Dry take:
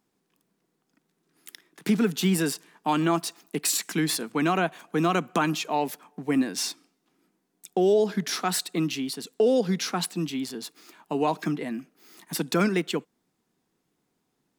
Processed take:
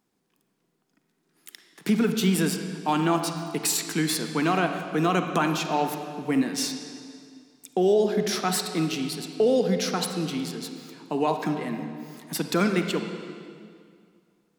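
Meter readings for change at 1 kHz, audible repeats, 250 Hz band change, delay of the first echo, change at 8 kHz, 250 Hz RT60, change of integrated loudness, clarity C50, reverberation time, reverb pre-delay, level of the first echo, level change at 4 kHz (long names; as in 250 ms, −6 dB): +1.0 dB, no echo audible, +1.0 dB, no echo audible, +0.5 dB, 2.3 s, +1.0 dB, 6.5 dB, 2.2 s, 34 ms, no echo audible, +1.0 dB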